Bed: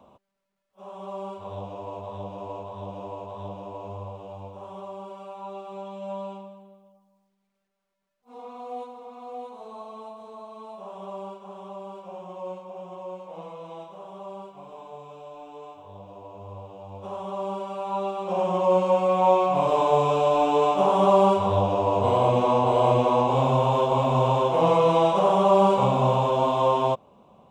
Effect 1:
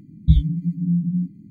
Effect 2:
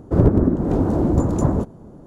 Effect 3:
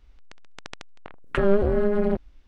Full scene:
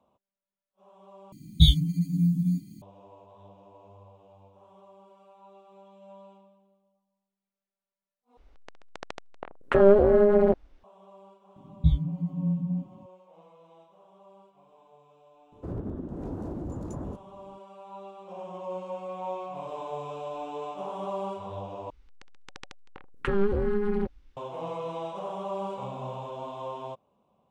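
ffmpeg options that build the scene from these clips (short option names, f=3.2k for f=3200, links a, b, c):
-filter_complex "[1:a]asplit=2[a][b];[3:a]asplit=2[c][d];[0:a]volume=-15.5dB[e];[a]aexciter=amount=10:drive=7.8:freq=2.5k[f];[c]equalizer=f=590:t=o:w=2.4:g=11[g];[2:a]alimiter=limit=-11.5dB:level=0:latency=1:release=59[h];[d]asuperstop=centerf=650:order=12:qfactor=4[i];[e]asplit=4[j][k][l][m];[j]atrim=end=1.324[n];[f]atrim=end=1.5,asetpts=PTS-STARTPTS,volume=-3dB[o];[k]atrim=start=2.816:end=8.374[p];[g]atrim=end=2.47,asetpts=PTS-STARTPTS,volume=-5dB[q];[l]atrim=start=10.836:end=21.904[r];[i]atrim=end=2.47,asetpts=PTS-STARTPTS,volume=-4.5dB[s];[m]atrim=start=24.366[t];[b]atrim=end=1.5,asetpts=PTS-STARTPTS,volume=-7dB,afade=t=in:d=0.004:c=hsin,afade=t=out:st=1.496:d=0.004:c=hsin,adelay=11560[u];[h]atrim=end=2.06,asetpts=PTS-STARTPTS,volume=-15.5dB,afade=t=in:d=0.004:c=hsin,afade=t=out:st=2.056:d=0.004:c=hsin,adelay=15520[v];[n][o]acrossfade=d=0.004:c1=hsin:c2=hsin[w];[w][p]acrossfade=d=0.004:c1=hsin:c2=hsin[x];[x][q]acrossfade=d=0.004:c1=hsin:c2=hsin[y];[y][r]acrossfade=d=0.004:c1=hsin:c2=hsin[z];[z][s]acrossfade=d=0.004:c1=hsin:c2=hsin[aa];[aa][t]acrossfade=d=0.004:c1=hsin:c2=hsin[ab];[ab][u][v]amix=inputs=3:normalize=0"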